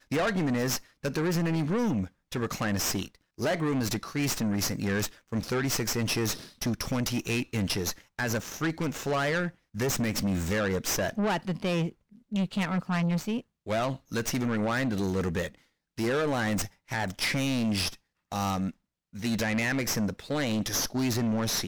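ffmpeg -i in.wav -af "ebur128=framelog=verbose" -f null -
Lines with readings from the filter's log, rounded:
Integrated loudness:
  I:         -29.4 LUFS
  Threshold: -39.6 LUFS
Loudness range:
  LRA:         1.2 LU
  Threshold: -49.7 LUFS
  LRA low:   -30.3 LUFS
  LRA high:  -29.1 LUFS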